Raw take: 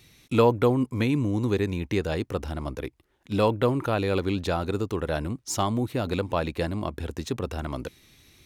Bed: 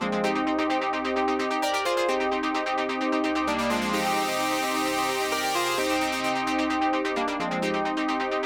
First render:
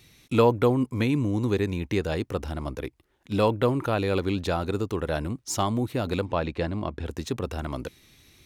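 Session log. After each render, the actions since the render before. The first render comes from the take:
0:06.25–0:07.06: high-frequency loss of the air 94 metres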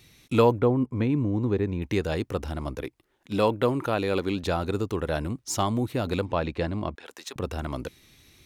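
0:00.60–0:01.82: low-pass filter 1,100 Hz 6 dB per octave
0:02.82–0:04.43: parametric band 62 Hz −9.5 dB 1.5 octaves
0:06.95–0:07.36: high-pass filter 830 Hz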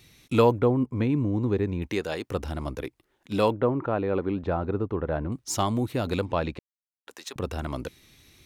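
0:01.87–0:02.29: high-pass filter 220 Hz → 570 Hz 6 dB per octave
0:03.52–0:05.32: low-pass filter 1,400 Hz
0:06.59–0:07.07: silence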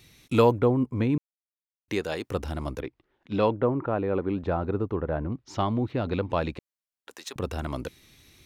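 0:01.18–0:01.88: silence
0:02.80–0:04.30: high-frequency loss of the air 190 metres
0:05.01–0:06.30: high-frequency loss of the air 230 metres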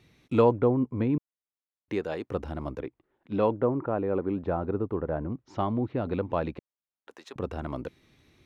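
low-pass filter 1,200 Hz 6 dB per octave
low-shelf EQ 84 Hz −9 dB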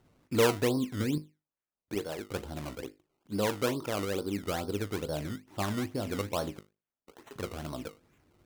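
tuned comb filter 51 Hz, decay 0.26 s, harmonics all, mix 70%
sample-and-hold swept by an LFO 18×, swing 100% 2.3 Hz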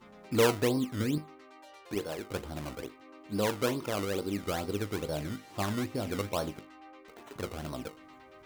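mix in bed −27.5 dB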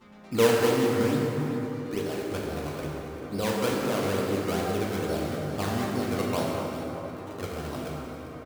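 single-tap delay 395 ms −13.5 dB
dense smooth reverb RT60 4.1 s, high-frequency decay 0.45×, DRR −3 dB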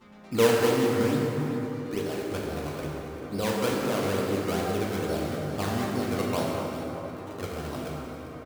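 no processing that can be heard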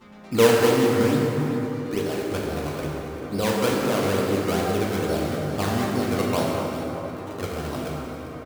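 level +4.5 dB

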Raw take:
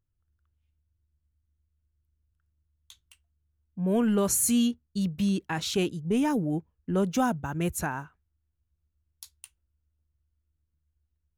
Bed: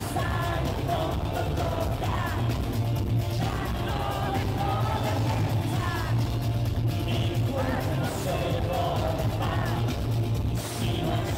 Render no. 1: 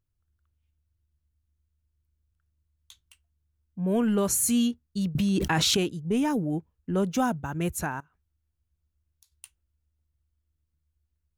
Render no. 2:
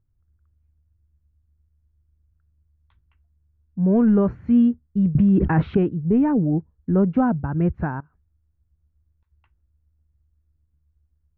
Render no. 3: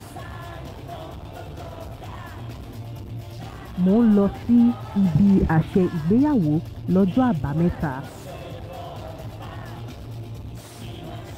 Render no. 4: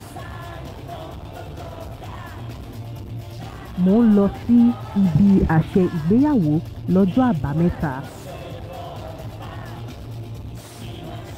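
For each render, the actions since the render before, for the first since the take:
0:05.15–0:05.77: envelope flattener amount 100%; 0:08.00–0:09.32: downward compressor 5 to 1, threshold −59 dBFS
inverse Chebyshev low-pass filter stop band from 7,500 Hz, stop band 70 dB; low-shelf EQ 400 Hz +11 dB
mix in bed −8.5 dB
level +2 dB

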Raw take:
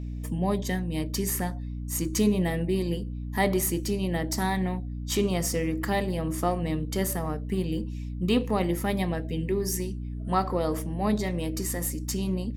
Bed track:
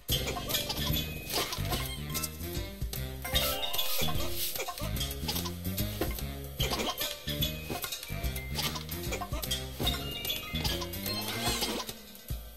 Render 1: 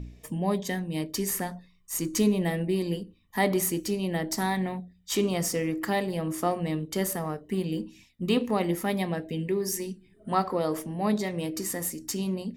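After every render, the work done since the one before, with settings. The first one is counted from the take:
hum removal 60 Hz, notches 5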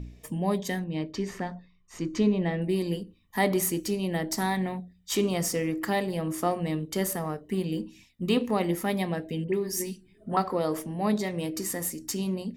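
0:00.84–0:02.62: high-frequency loss of the air 170 metres
0:09.44–0:10.37: all-pass dispersion highs, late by 50 ms, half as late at 1,400 Hz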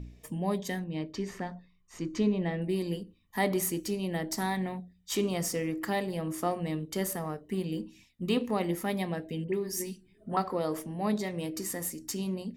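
level −3.5 dB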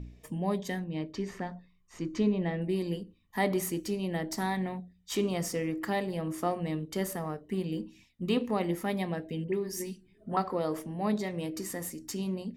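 high-shelf EQ 5,500 Hz −5.5 dB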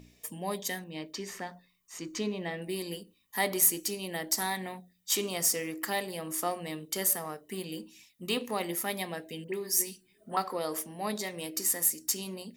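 RIAA equalisation recording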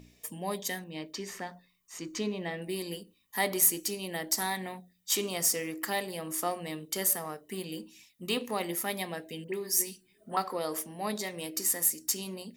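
no processing that can be heard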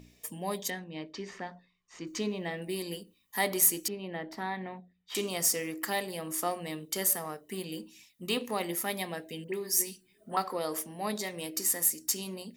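0:00.70–0:02.07: high-frequency loss of the air 130 metres
0:03.88–0:05.15: high-frequency loss of the air 400 metres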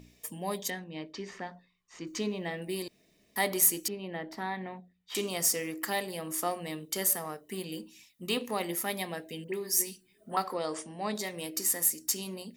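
0:02.88–0:03.36: fill with room tone
0:10.54–0:11.15: Butterworth low-pass 9,400 Hz 72 dB per octave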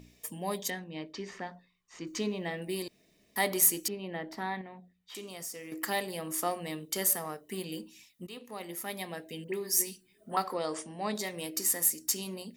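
0:04.61–0:05.72: downward compressor 2 to 1, threshold −48 dBFS
0:08.27–0:09.50: fade in linear, from −17.5 dB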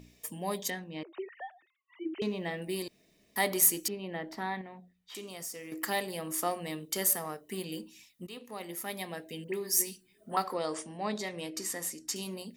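0:01.03–0:02.22: three sine waves on the formant tracks
0:10.97–0:12.16: high-frequency loss of the air 59 metres

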